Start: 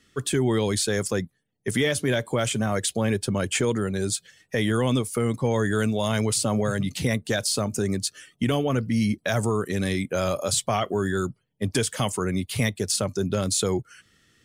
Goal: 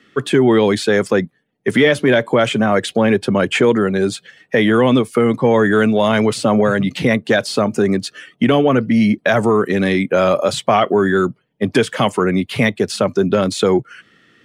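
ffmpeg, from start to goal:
-filter_complex "[0:a]acontrast=85,acrossover=split=150 3400:gain=0.1 1 0.126[s0][s1][s2];[s0][s1][s2]amix=inputs=3:normalize=0,volume=1.78"

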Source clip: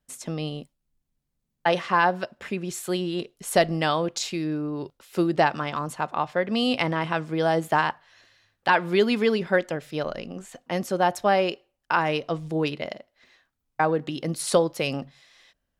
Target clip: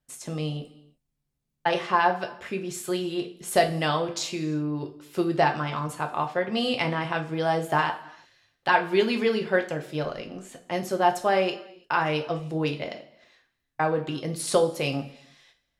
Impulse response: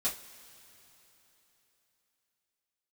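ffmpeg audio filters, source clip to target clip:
-filter_complex "[0:a]asplit=2[s0][s1];[1:a]atrim=start_sample=2205,afade=t=out:st=0.27:d=0.01,atrim=end_sample=12348,asetrate=27783,aresample=44100[s2];[s1][s2]afir=irnorm=-1:irlink=0,volume=0.335[s3];[s0][s3]amix=inputs=2:normalize=0,volume=0.596"

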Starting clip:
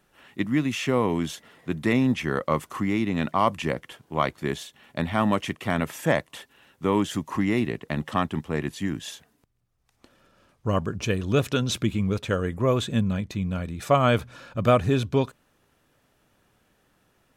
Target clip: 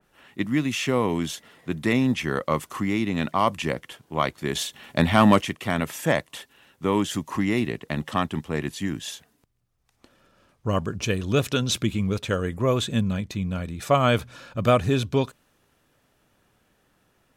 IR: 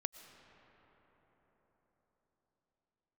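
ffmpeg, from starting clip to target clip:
-filter_complex "[0:a]asettb=1/sr,asplit=3[s0][s1][s2];[s0]atrim=end=4.554[s3];[s1]atrim=start=4.55:end=5.42,asetpts=PTS-STARTPTS,afade=t=in:d=0.004:c=qsin,afade=t=out:st=0.866:d=0.004:c=qsin,acontrast=87[s4];[s2]atrim=start=5.416[s5];[s3][s4]acrossfade=d=0.004:c1=hsin:c2=qsin[s6];[s6][s5]acrossfade=d=0.004:c1=qsin:c2=hsin,adynamicequalizer=threshold=0.01:dfrequency=2500:dqfactor=0.7:tfrequency=2500:tqfactor=0.7:attack=5:release=100:ratio=0.375:range=2:mode=boostabove:tftype=highshelf"

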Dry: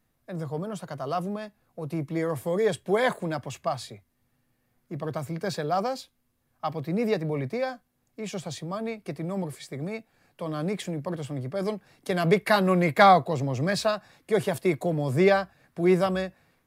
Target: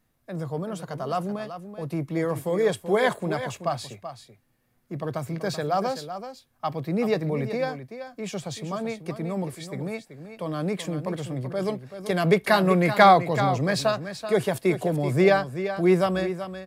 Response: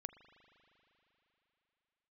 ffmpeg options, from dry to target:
-af "aecho=1:1:382:0.299,volume=1.19"

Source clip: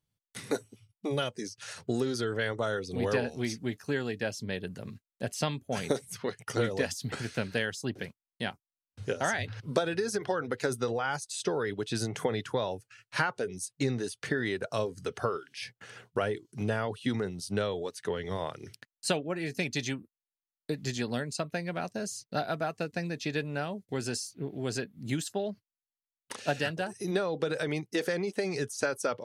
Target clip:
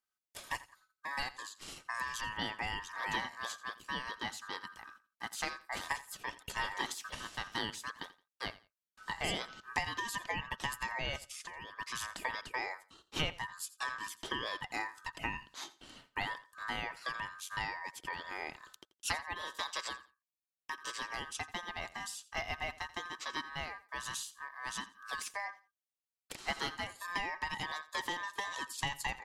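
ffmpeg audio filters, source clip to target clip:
-filter_complex "[0:a]highpass=100,lowshelf=f=480:g=-7,asplit=3[s0][s1][s2];[s0]afade=t=out:st=11.17:d=0.02[s3];[s1]acompressor=threshold=0.0112:ratio=10,afade=t=in:st=11.17:d=0.02,afade=t=out:st=11.73:d=0.02[s4];[s2]afade=t=in:st=11.73:d=0.02[s5];[s3][s4][s5]amix=inputs=3:normalize=0,aeval=exprs='val(0)*sin(2*PI*1400*n/s)':c=same,asplit=2[s6][s7];[s7]aecho=0:1:85|170:0.126|0.029[s8];[s6][s8]amix=inputs=2:normalize=0,volume=0.841"

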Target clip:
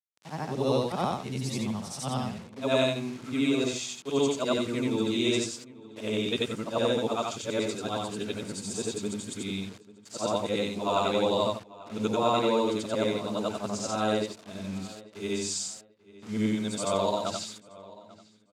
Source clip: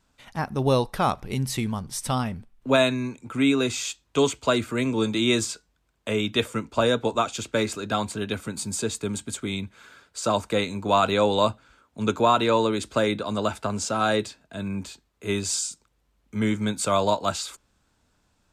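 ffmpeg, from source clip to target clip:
-filter_complex "[0:a]afftfilt=real='re':imag='-im':win_size=8192:overlap=0.75,equalizer=f=1500:t=o:w=1.2:g=-7,acrusher=bits=7:mix=0:aa=0.000001,highpass=130,lowpass=7800,asplit=2[s0][s1];[s1]adelay=841,lowpass=f=3400:p=1,volume=0.1,asplit=2[s2][s3];[s3]adelay=841,lowpass=f=3400:p=1,volume=0.29[s4];[s0][s2][s4]amix=inputs=3:normalize=0,volume=1.19"

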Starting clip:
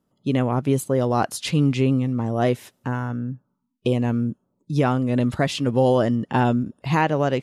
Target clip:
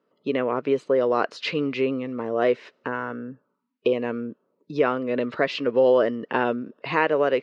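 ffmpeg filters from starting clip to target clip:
-filter_complex "[0:a]asplit=2[s0][s1];[s1]acompressor=threshold=0.0398:ratio=6,volume=1.26[s2];[s0][s2]amix=inputs=2:normalize=0,highpass=440,equalizer=f=450:t=q:w=4:g=6,equalizer=f=800:t=q:w=4:g=-10,equalizer=f=3400:t=q:w=4:g=-8,lowpass=f=3900:w=0.5412,lowpass=f=3900:w=1.3066"

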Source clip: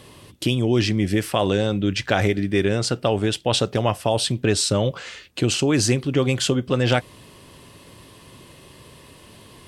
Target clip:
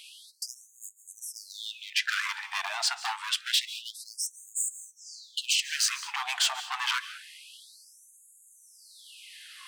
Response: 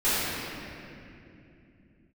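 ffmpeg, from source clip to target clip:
-filter_complex "[0:a]highshelf=f=9200:g=-9.5,bandreject=f=50:t=h:w=6,bandreject=f=100:t=h:w=6,bandreject=f=150:t=h:w=6,bandreject=f=200:t=h:w=6,asplit=2[s0][s1];[s1]acompressor=threshold=0.0282:ratio=6,volume=0.75[s2];[s0][s2]amix=inputs=2:normalize=0,volume=8.41,asoftclip=hard,volume=0.119,asplit=2[s3][s4];[1:a]atrim=start_sample=2205,atrim=end_sample=4410,adelay=133[s5];[s4][s5]afir=irnorm=-1:irlink=0,volume=0.0562[s6];[s3][s6]amix=inputs=2:normalize=0,afftfilt=real='re*gte(b*sr/1024,640*pow(6600/640,0.5+0.5*sin(2*PI*0.27*pts/sr)))':imag='im*gte(b*sr/1024,640*pow(6600/640,0.5+0.5*sin(2*PI*0.27*pts/sr)))':win_size=1024:overlap=0.75"

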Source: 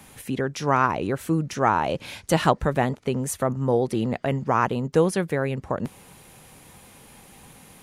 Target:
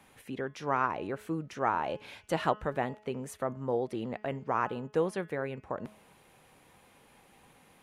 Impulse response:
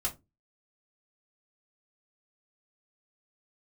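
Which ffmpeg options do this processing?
-af "bass=f=250:g=-7,treble=f=4000:g=-9,bandreject=f=212.1:t=h:w=4,bandreject=f=424.2:t=h:w=4,bandreject=f=636.3:t=h:w=4,bandreject=f=848.4:t=h:w=4,bandreject=f=1060.5:t=h:w=4,bandreject=f=1272.6:t=h:w=4,bandreject=f=1484.7:t=h:w=4,bandreject=f=1696.8:t=h:w=4,bandreject=f=1908.9:t=h:w=4,bandreject=f=2121:t=h:w=4,bandreject=f=2333.1:t=h:w=4,bandreject=f=2545.2:t=h:w=4,bandreject=f=2757.3:t=h:w=4,bandreject=f=2969.4:t=h:w=4,bandreject=f=3181.5:t=h:w=4,bandreject=f=3393.6:t=h:w=4,volume=0.398"

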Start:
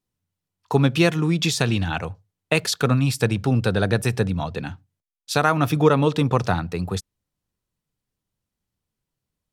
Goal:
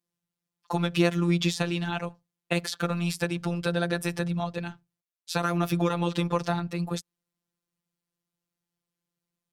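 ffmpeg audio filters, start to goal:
-filter_complex "[0:a]acrossover=split=910|3000[s0][s1][s2];[s0]acompressor=threshold=0.126:ratio=4[s3];[s1]acompressor=threshold=0.0398:ratio=4[s4];[s2]acompressor=threshold=0.0282:ratio=4[s5];[s3][s4][s5]amix=inputs=3:normalize=0,highpass=110,afftfilt=real='hypot(re,im)*cos(PI*b)':imag='0':win_size=1024:overlap=0.75"

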